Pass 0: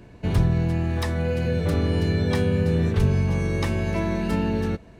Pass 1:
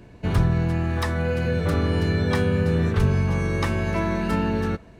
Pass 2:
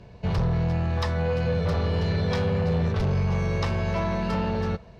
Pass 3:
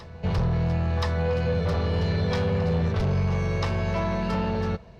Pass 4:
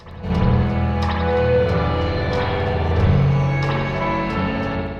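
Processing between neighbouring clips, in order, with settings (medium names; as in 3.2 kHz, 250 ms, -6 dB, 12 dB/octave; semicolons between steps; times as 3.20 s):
dynamic bell 1.3 kHz, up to +7 dB, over -48 dBFS, Q 1.5
Chebyshev shaper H 5 -9 dB, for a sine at -8.5 dBFS; FFT filter 190 Hz 0 dB, 290 Hz -12 dB, 470 Hz +1 dB, 1 kHz 0 dB, 1.6 kHz -5 dB, 5.1 kHz +2 dB, 9.1 kHz -14 dB; trim -8 dB
reverse echo 1024 ms -18.5 dB
crackle 17 per s -42 dBFS; reverberation RT60 1.3 s, pre-delay 58 ms, DRR -8.5 dB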